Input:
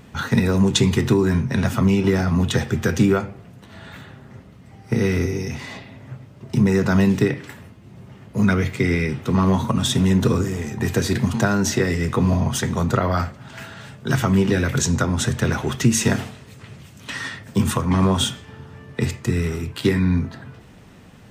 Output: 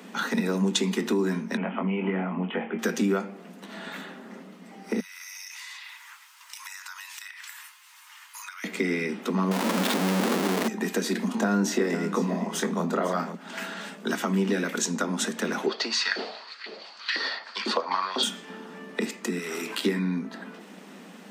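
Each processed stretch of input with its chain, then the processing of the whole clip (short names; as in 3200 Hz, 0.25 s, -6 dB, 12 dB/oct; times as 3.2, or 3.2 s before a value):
1.57–2.79 rippled Chebyshev low-pass 3200 Hz, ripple 6 dB + doubler 22 ms -5 dB
5–8.64 Chebyshev high-pass 940 Hz, order 5 + tilt +3.5 dB/oct + compressor 12:1, threshold -40 dBFS
9.51–10.68 CVSD 32 kbps + LPF 3900 Hz + Schmitt trigger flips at -33.5 dBFS
11.28–13.35 tilt shelf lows +3 dB, about 1500 Hz + doubler 24 ms -7 dB + echo 0.502 s -12 dB
15.66–18.23 high shelf 2800 Hz -10.5 dB + LFO high-pass saw up 2 Hz 350–2000 Hz + synth low-pass 4500 Hz, resonance Q 15
19.38–19.78 HPF 800 Hz 6 dB/oct + short-mantissa float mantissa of 8-bit + fast leveller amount 70%
whole clip: compressor 2:1, threshold -31 dBFS; steep high-pass 180 Hz 96 dB/oct; gain +3 dB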